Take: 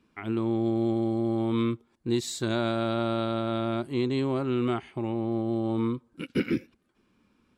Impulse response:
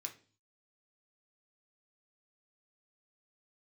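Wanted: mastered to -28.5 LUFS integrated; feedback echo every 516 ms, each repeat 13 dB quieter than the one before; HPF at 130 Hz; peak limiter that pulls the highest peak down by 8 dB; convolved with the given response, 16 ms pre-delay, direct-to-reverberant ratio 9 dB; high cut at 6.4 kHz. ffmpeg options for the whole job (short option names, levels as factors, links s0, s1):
-filter_complex "[0:a]highpass=130,lowpass=6400,alimiter=limit=0.0708:level=0:latency=1,aecho=1:1:516|1032|1548:0.224|0.0493|0.0108,asplit=2[s0][s1];[1:a]atrim=start_sample=2205,adelay=16[s2];[s1][s2]afir=irnorm=-1:irlink=0,volume=0.501[s3];[s0][s3]amix=inputs=2:normalize=0,volume=1.68"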